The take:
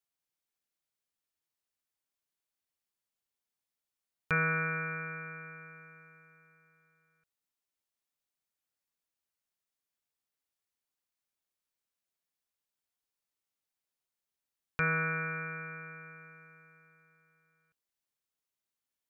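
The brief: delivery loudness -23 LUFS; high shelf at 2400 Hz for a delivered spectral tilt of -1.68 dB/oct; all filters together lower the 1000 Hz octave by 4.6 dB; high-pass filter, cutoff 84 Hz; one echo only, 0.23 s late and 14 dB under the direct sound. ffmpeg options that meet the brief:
-af "highpass=84,equalizer=f=1k:t=o:g=-8.5,highshelf=f=2.4k:g=4,aecho=1:1:230:0.2,volume=11.5dB"

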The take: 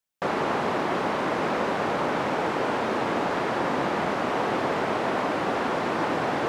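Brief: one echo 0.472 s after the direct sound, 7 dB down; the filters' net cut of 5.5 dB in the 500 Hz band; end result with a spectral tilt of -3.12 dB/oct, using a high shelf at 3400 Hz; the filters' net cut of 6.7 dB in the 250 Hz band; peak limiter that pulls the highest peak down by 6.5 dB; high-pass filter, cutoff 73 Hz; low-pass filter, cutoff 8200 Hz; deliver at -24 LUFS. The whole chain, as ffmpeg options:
-af "highpass=73,lowpass=8.2k,equalizer=f=250:t=o:g=-7,equalizer=f=500:t=o:g=-5,highshelf=f=3.4k:g=-8,alimiter=limit=-23dB:level=0:latency=1,aecho=1:1:472:0.447,volume=7dB"

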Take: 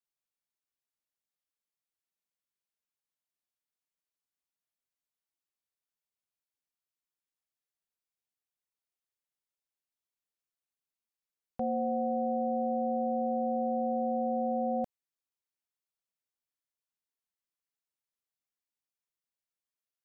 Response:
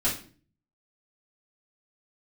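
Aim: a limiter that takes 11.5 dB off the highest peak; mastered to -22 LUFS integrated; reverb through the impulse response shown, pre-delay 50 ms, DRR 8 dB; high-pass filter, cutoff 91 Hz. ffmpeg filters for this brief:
-filter_complex "[0:a]highpass=91,alimiter=level_in=10.5dB:limit=-24dB:level=0:latency=1,volume=-10.5dB,asplit=2[a][b];[1:a]atrim=start_sample=2205,adelay=50[c];[b][c]afir=irnorm=-1:irlink=0,volume=-17.5dB[d];[a][d]amix=inputs=2:normalize=0,volume=18dB"

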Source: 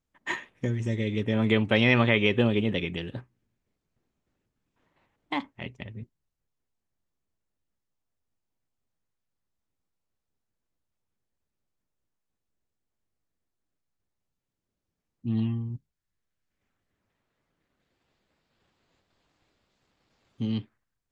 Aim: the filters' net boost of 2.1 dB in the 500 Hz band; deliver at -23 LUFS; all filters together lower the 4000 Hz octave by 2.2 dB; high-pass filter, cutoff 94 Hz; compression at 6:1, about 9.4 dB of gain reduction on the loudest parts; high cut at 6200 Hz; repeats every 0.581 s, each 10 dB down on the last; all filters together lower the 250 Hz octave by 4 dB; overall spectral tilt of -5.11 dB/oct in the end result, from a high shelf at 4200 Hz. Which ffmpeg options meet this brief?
-af "highpass=94,lowpass=6.2k,equalizer=f=250:t=o:g=-5.5,equalizer=f=500:t=o:g=4,equalizer=f=4k:t=o:g=-7,highshelf=f=4.2k:g=8,acompressor=threshold=-27dB:ratio=6,aecho=1:1:581|1162|1743|2324:0.316|0.101|0.0324|0.0104,volume=11.5dB"

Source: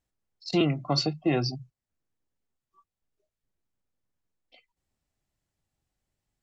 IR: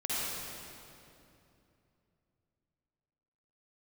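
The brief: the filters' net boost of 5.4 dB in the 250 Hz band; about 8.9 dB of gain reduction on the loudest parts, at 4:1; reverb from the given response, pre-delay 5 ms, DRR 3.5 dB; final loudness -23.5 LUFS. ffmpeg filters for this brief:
-filter_complex "[0:a]equalizer=f=250:t=o:g=8,acompressor=threshold=-26dB:ratio=4,asplit=2[a][b];[1:a]atrim=start_sample=2205,adelay=5[c];[b][c]afir=irnorm=-1:irlink=0,volume=-11dB[d];[a][d]amix=inputs=2:normalize=0,volume=8dB"

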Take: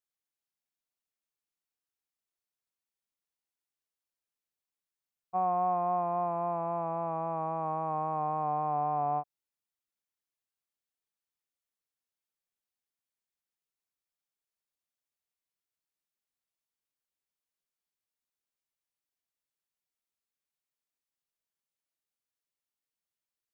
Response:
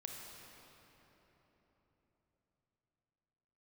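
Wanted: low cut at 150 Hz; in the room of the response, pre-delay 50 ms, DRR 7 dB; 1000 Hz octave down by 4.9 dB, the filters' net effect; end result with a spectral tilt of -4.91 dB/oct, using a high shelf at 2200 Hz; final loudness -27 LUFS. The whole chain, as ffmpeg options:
-filter_complex "[0:a]highpass=150,equalizer=f=1k:t=o:g=-8.5,highshelf=f=2.2k:g=5,asplit=2[a][b];[1:a]atrim=start_sample=2205,adelay=50[c];[b][c]afir=irnorm=-1:irlink=0,volume=-4.5dB[d];[a][d]amix=inputs=2:normalize=0,volume=8dB"

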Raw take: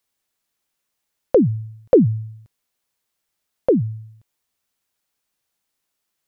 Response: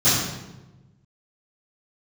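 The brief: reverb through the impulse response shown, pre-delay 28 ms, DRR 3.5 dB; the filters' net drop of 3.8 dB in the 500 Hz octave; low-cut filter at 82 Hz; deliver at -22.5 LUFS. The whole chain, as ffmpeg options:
-filter_complex "[0:a]highpass=82,equalizer=f=500:t=o:g=-4.5,asplit=2[a][b];[1:a]atrim=start_sample=2205,adelay=28[c];[b][c]afir=irnorm=-1:irlink=0,volume=-22.5dB[d];[a][d]amix=inputs=2:normalize=0,volume=-4.5dB"

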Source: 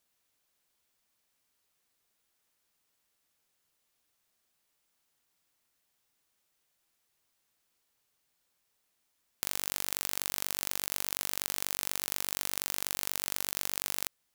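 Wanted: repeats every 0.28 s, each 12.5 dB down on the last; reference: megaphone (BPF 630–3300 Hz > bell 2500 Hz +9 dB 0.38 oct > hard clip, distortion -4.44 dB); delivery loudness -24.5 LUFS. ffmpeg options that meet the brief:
-af "highpass=630,lowpass=3.3k,equalizer=f=2.5k:t=o:w=0.38:g=9,aecho=1:1:280|560|840:0.237|0.0569|0.0137,asoftclip=type=hard:threshold=-31.5dB,volume=19.5dB"

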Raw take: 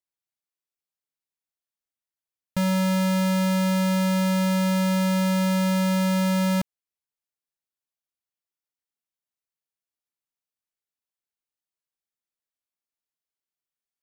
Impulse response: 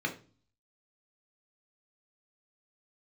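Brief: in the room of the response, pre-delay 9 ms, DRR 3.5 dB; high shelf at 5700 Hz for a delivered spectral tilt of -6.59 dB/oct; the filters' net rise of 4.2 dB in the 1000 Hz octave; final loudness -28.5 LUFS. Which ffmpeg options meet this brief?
-filter_complex "[0:a]equalizer=f=1k:t=o:g=4.5,highshelf=f=5.7k:g=6,asplit=2[a][b];[1:a]atrim=start_sample=2205,adelay=9[c];[b][c]afir=irnorm=-1:irlink=0,volume=-9.5dB[d];[a][d]amix=inputs=2:normalize=0,volume=-12dB"

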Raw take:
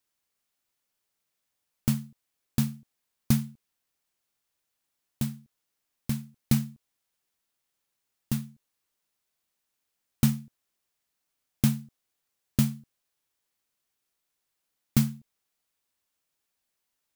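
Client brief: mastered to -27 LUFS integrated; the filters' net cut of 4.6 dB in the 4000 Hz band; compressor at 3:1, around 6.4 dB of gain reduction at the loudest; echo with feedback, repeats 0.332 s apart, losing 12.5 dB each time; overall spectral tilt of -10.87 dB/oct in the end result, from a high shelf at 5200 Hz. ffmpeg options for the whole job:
-af "equalizer=f=4k:t=o:g=-4,highshelf=f=5.2k:g=-4,acompressor=threshold=-26dB:ratio=3,aecho=1:1:332|664|996:0.237|0.0569|0.0137,volume=10dB"

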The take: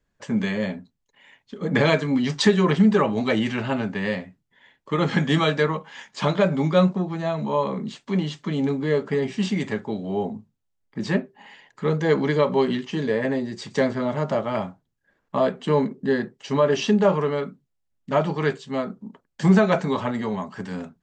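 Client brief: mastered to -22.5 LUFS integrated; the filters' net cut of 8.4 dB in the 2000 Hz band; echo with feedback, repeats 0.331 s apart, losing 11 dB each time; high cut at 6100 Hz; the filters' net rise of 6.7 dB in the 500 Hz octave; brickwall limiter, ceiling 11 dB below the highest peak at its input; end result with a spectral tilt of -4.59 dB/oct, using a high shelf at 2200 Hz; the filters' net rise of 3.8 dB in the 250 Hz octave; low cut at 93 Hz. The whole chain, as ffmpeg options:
-af "highpass=93,lowpass=6.1k,equalizer=f=250:t=o:g=3.5,equalizer=f=500:t=o:g=8,equalizer=f=2k:t=o:g=-7,highshelf=f=2.2k:g=-8.5,alimiter=limit=-12dB:level=0:latency=1,aecho=1:1:331|662|993:0.282|0.0789|0.0221,volume=-0.5dB"

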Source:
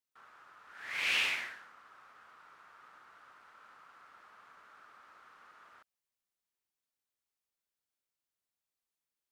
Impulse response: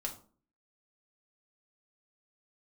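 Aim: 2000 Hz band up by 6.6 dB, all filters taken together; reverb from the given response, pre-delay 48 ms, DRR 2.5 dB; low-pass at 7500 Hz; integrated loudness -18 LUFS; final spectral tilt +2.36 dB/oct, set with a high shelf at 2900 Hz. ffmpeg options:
-filter_complex "[0:a]lowpass=7.5k,equalizer=f=2k:t=o:g=4,highshelf=f=2.9k:g=9,asplit=2[a][b];[1:a]atrim=start_sample=2205,adelay=48[c];[b][c]afir=irnorm=-1:irlink=0,volume=-3dB[d];[a][d]amix=inputs=2:normalize=0,volume=6dB"

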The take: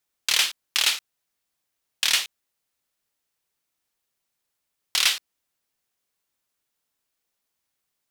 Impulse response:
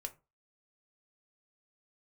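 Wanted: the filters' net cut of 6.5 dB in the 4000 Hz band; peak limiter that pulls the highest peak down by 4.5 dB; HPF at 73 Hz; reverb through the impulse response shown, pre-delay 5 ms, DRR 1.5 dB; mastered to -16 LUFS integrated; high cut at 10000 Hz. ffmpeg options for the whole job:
-filter_complex "[0:a]highpass=73,lowpass=10k,equalizer=f=4k:t=o:g=-8.5,alimiter=limit=-14dB:level=0:latency=1,asplit=2[a][b];[1:a]atrim=start_sample=2205,adelay=5[c];[b][c]afir=irnorm=-1:irlink=0,volume=1dB[d];[a][d]amix=inputs=2:normalize=0,volume=11dB"

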